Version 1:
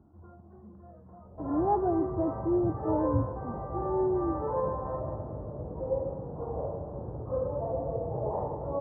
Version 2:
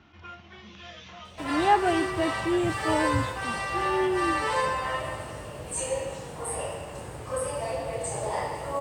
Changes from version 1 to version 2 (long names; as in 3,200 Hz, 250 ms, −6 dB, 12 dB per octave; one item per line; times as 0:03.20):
background −3.0 dB
master: remove Gaussian smoothing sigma 11 samples